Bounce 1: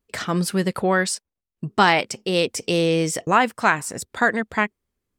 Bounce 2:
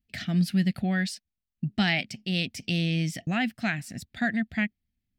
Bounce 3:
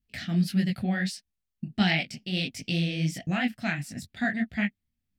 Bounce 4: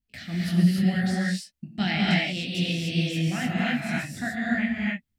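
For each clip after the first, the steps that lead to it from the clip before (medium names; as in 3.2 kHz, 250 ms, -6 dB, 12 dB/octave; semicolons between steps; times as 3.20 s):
FFT filter 240 Hz 0 dB, 460 Hz -25 dB, 710 Hz -9 dB, 1 kHz -30 dB, 1.8 kHz -6 dB, 2.6 kHz -4 dB, 4.4 kHz -5 dB, 8.1 kHz -17 dB, 14 kHz -8 dB
detune thickener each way 53 cents; trim +3 dB
gated-style reverb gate 320 ms rising, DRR -4.5 dB; trim -3.5 dB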